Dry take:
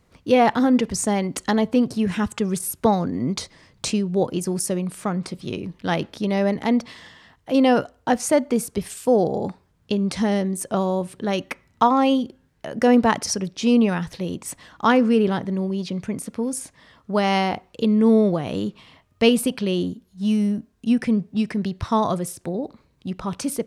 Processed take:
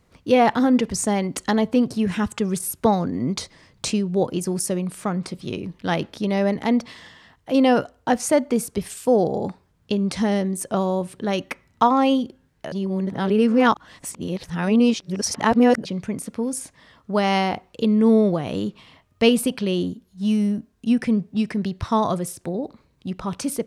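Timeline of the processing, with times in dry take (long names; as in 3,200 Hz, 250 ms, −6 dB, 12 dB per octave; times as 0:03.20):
0:12.72–0:15.85: reverse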